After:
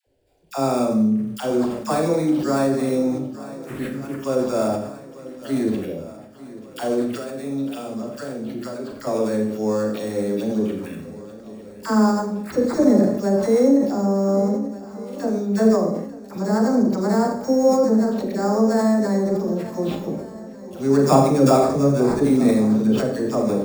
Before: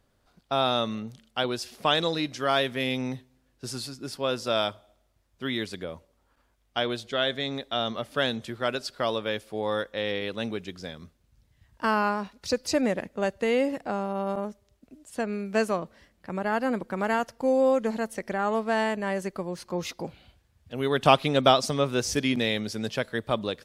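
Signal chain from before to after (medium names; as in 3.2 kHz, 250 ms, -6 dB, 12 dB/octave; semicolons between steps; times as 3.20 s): sample-rate reducer 6.1 kHz, jitter 0%; touch-sensitive phaser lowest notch 200 Hz, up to 3 kHz, full sweep at -26.5 dBFS; phase dispersion lows, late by 69 ms, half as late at 740 Hz; 7.06–9.07 s: compression, threshold -35 dBFS, peak gain reduction 12 dB; peaking EQ 250 Hz +14 dB 2.4 oct; hum notches 60/120/180/240/300 Hz; shuffle delay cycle 1491 ms, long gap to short 1.5:1, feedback 47%, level -17 dB; Schroeder reverb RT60 0.58 s, combs from 29 ms, DRR 2 dB; decay stretcher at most 66 dB/s; trim -3 dB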